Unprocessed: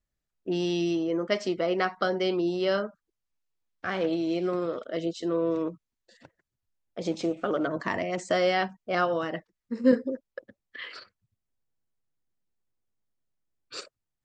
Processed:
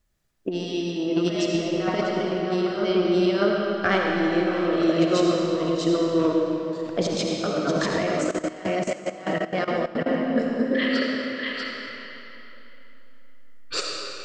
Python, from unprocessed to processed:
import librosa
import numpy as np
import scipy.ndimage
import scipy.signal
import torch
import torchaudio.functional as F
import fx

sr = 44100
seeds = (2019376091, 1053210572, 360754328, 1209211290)

y = x + 10.0 ** (-3.0 / 20.0) * np.pad(x, (int(641 * sr / 1000.0), 0))[:len(x)]
y = fx.over_compress(y, sr, threshold_db=-31.0, ratio=-0.5)
y = fx.rev_freeverb(y, sr, rt60_s=3.3, hf_ratio=0.8, predelay_ms=30, drr_db=-1.0)
y = fx.level_steps(y, sr, step_db=15, at=(7.96, 10.07))
y = y * librosa.db_to_amplitude(6.0)